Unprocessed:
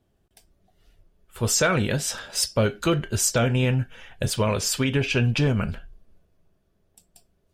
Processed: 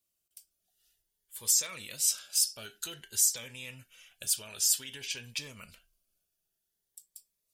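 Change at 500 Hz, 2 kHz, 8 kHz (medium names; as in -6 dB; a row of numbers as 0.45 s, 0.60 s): -26.5 dB, -15.5 dB, -0.5 dB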